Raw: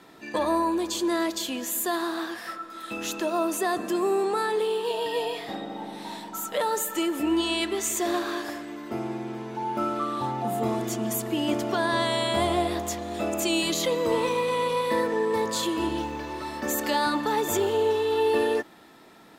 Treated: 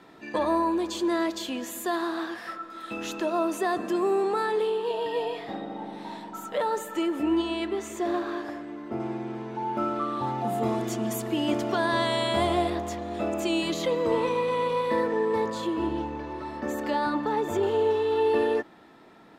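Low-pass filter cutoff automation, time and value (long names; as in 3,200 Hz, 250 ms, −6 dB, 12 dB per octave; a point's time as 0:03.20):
low-pass filter 6 dB per octave
3,200 Hz
from 0:04.70 1,900 Hz
from 0:07.42 1,200 Hz
from 0:09.00 2,600 Hz
from 0:10.27 5,400 Hz
from 0:12.70 2,200 Hz
from 0:15.50 1,200 Hz
from 0:17.63 2,200 Hz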